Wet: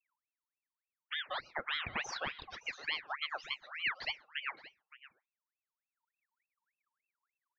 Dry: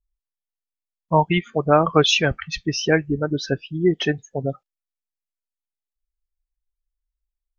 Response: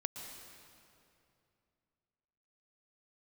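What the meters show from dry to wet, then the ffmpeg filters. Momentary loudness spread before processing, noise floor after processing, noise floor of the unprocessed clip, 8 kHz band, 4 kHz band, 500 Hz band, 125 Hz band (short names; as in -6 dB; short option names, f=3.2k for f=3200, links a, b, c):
11 LU, under -85 dBFS, under -85 dBFS, n/a, -14.0 dB, -29.5 dB, -34.5 dB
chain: -filter_complex "[0:a]aemphasis=mode=reproduction:type=75kf,acrossover=split=340|3800[a][b][c];[a]acompressor=threshold=-35dB:ratio=4[d];[b]acompressor=threshold=-19dB:ratio=4[e];[c]acompressor=threshold=-47dB:ratio=4[f];[d][e][f]amix=inputs=3:normalize=0,alimiter=limit=-14dB:level=0:latency=1:release=119,adynamicequalizer=threshold=0.00708:dfrequency=2500:dqfactor=1.3:tfrequency=2500:tqfactor=1.3:attack=5:release=100:ratio=0.375:range=2:mode=cutabove:tftype=bell,flanger=delay=0.5:depth=3.4:regen=-85:speed=0.34:shape=triangular,aecho=1:1:568:0.141,asplit=2[g][h];[1:a]atrim=start_sample=2205,atrim=end_sample=6174[i];[h][i]afir=irnorm=-1:irlink=0,volume=-9.5dB[j];[g][j]amix=inputs=2:normalize=0,aresample=11025,aresample=44100,aeval=exprs='val(0)*sin(2*PI*1800*n/s+1800*0.5/3.4*sin(2*PI*3.4*n/s))':c=same,volume=-7dB"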